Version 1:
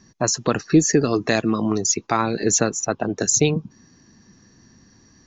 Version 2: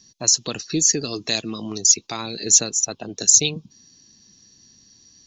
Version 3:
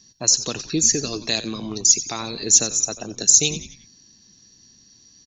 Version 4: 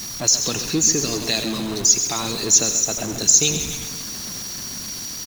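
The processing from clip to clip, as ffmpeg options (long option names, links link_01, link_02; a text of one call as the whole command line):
ffmpeg -i in.wav -af "highshelf=frequency=2400:width_type=q:width=1.5:gain=13.5,volume=-9dB" out.wav
ffmpeg -i in.wav -filter_complex "[0:a]asplit=5[link_01][link_02][link_03][link_04][link_05];[link_02]adelay=90,afreqshift=-93,volume=-14dB[link_06];[link_03]adelay=180,afreqshift=-186,volume=-20.9dB[link_07];[link_04]adelay=270,afreqshift=-279,volume=-27.9dB[link_08];[link_05]adelay=360,afreqshift=-372,volume=-34.8dB[link_09];[link_01][link_06][link_07][link_08][link_09]amix=inputs=5:normalize=0" out.wav
ffmpeg -i in.wav -af "aeval=exprs='val(0)+0.5*0.0562*sgn(val(0))':channel_layout=same,aecho=1:1:133|266|399|532|665|798:0.282|0.152|0.0822|0.0444|0.024|0.0129,volume=-1dB" out.wav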